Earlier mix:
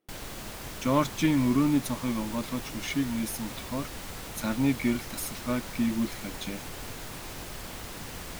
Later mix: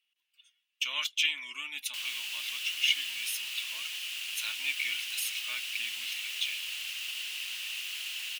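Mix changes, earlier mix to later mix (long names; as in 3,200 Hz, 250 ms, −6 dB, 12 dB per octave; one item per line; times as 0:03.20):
background: entry +1.85 s
master: add high-pass with resonance 2,800 Hz, resonance Q 6.9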